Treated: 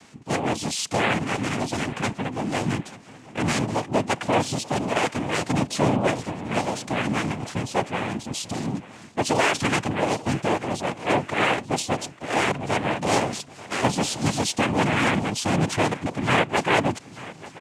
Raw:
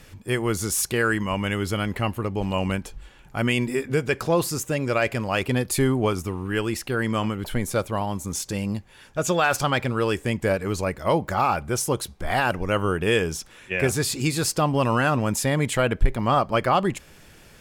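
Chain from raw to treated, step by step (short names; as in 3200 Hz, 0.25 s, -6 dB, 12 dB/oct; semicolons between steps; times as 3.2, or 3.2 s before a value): noise vocoder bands 4; feedback echo 0.887 s, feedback 44%, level -18.5 dB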